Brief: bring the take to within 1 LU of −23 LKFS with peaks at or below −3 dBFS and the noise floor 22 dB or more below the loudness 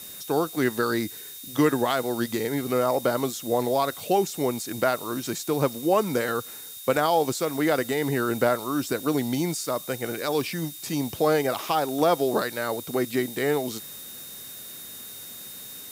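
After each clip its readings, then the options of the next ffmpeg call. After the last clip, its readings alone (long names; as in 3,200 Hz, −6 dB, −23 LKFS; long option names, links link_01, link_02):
interfering tone 3,700 Hz; level of the tone −46 dBFS; background noise floor −41 dBFS; target noise floor −48 dBFS; integrated loudness −25.5 LKFS; sample peak −8.0 dBFS; target loudness −23.0 LKFS
→ -af "bandreject=frequency=3700:width=30"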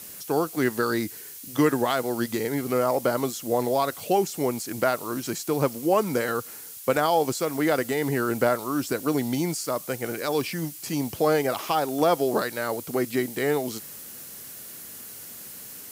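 interfering tone none found; background noise floor −41 dBFS; target noise floor −48 dBFS
→ -af "afftdn=noise_reduction=7:noise_floor=-41"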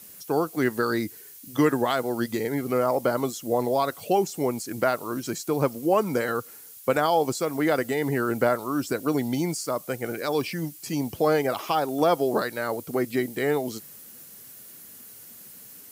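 background noise floor −46 dBFS; target noise floor −48 dBFS
→ -af "afftdn=noise_reduction=6:noise_floor=-46"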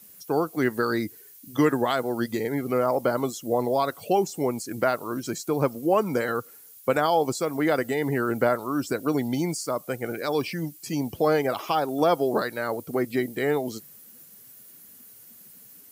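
background noise floor −50 dBFS; integrated loudness −26.0 LKFS; sample peak −8.5 dBFS; target loudness −23.0 LKFS
→ -af "volume=3dB"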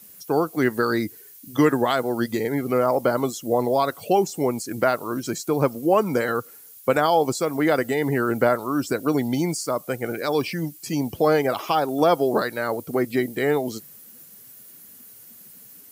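integrated loudness −23.0 LKFS; sample peak −5.5 dBFS; background noise floor −47 dBFS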